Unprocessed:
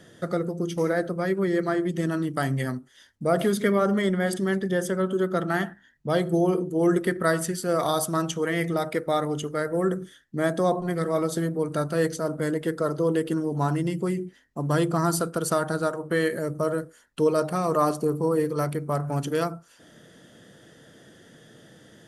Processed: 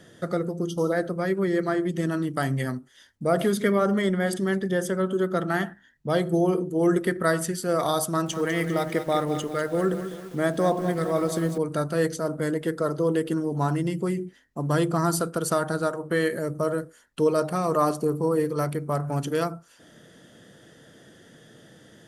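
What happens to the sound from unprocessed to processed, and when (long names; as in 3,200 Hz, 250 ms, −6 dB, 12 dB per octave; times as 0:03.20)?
0:00.69–0:00.92: time-frequency box erased 1,400–2,800 Hz
0:08.06–0:11.58: feedback echo at a low word length 199 ms, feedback 55%, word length 7 bits, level −10 dB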